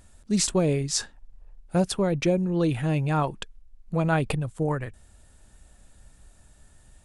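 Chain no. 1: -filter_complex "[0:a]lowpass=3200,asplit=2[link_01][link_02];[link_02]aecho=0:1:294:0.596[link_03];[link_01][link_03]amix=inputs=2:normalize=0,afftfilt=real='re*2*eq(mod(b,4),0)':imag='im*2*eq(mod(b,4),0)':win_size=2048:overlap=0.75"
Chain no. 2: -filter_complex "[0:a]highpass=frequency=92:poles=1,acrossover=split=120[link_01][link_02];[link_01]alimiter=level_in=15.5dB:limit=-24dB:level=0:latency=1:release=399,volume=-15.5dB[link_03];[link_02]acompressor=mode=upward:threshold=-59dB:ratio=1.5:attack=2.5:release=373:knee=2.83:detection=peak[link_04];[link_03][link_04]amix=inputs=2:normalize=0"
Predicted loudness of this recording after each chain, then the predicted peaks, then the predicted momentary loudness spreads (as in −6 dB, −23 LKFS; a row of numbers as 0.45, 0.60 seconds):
−27.0, −26.5 LKFS; −10.0, −8.0 dBFS; 16, 9 LU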